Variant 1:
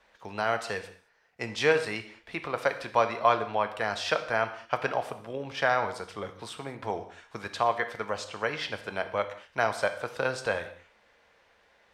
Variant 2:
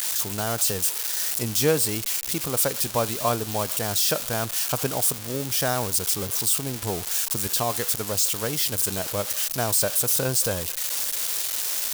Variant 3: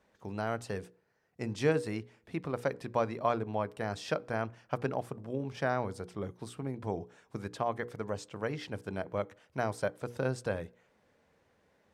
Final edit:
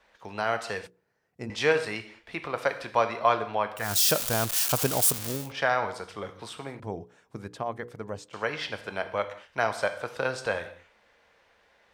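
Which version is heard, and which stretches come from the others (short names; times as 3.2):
1
0.87–1.5 from 3
3.88–5.4 from 2, crossfade 0.24 s
6.8–8.33 from 3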